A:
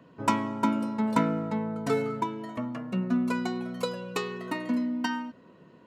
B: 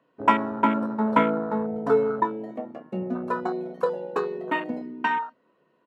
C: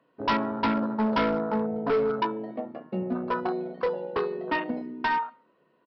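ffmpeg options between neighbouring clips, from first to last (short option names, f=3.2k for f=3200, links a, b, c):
-af "bass=f=250:g=-14,treble=f=4k:g=-7,aecho=1:1:14|27:0.376|0.335,afwtdn=0.0224,volume=7dB"
-af "aecho=1:1:72|144|216:0.0668|0.0267|0.0107,aresample=11025,volume=20.5dB,asoftclip=hard,volume=-20.5dB,aresample=44100"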